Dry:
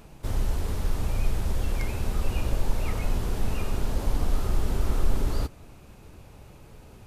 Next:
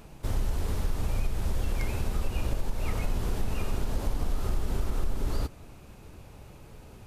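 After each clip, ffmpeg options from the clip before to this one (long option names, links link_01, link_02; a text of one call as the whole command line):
ffmpeg -i in.wav -af "acompressor=threshold=-22dB:ratio=6" out.wav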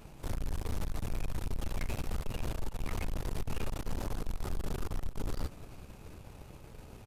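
ffmpeg -i in.wav -af "aeval=exprs='(tanh(56.2*val(0)+0.8)-tanh(0.8))/56.2':channel_layout=same,aecho=1:1:372:0.106,volume=3dB" out.wav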